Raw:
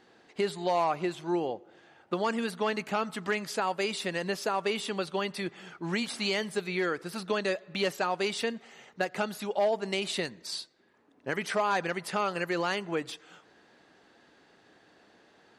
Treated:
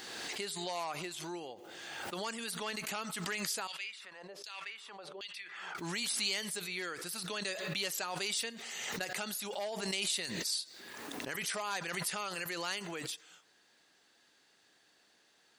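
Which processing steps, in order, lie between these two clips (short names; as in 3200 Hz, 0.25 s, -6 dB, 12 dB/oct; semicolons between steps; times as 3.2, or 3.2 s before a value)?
pre-emphasis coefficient 0.9; 3.67–5.75 LFO band-pass saw down 1.3 Hz 390–4100 Hz; backwards sustainer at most 26 dB/s; gain +4.5 dB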